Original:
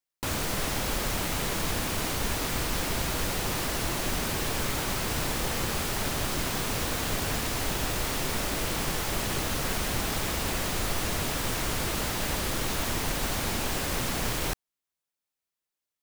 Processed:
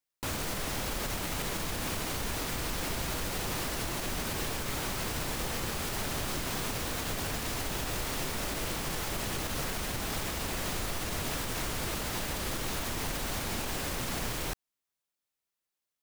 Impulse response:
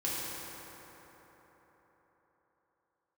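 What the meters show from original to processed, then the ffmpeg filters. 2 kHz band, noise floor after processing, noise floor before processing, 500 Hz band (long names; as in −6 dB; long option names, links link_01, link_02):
−4.5 dB, below −85 dBFS, below −85 dBFS, −4.5 dB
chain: -af "alimiter=limit=-24dB:level=0:latency=1:release=104"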